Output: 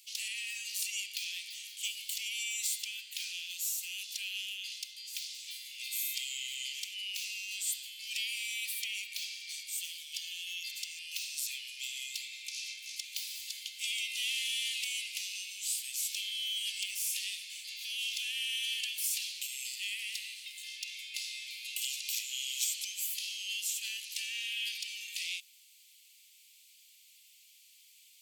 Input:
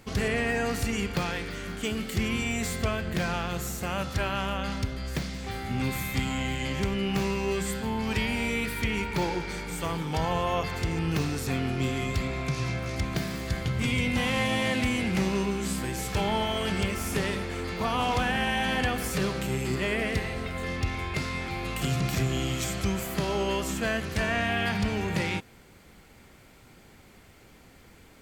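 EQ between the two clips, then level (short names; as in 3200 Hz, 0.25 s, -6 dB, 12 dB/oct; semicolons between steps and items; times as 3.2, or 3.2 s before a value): steep high-pass 2600 Hz 48 dB/oct; high shelf 6800 Hz +5.5 dB; 0.0 dB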